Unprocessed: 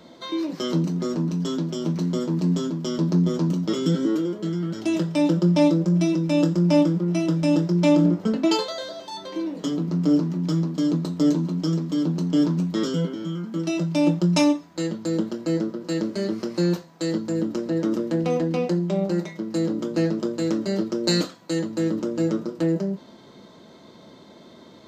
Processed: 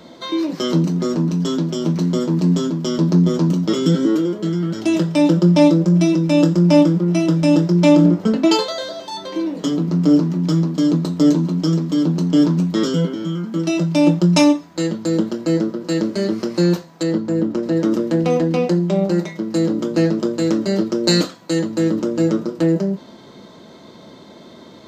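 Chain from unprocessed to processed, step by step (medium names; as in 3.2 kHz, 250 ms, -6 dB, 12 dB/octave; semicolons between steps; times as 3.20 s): 17.03–17.63 s: treble shelf 3.3 kHz -10.5 dB; trim +6 dB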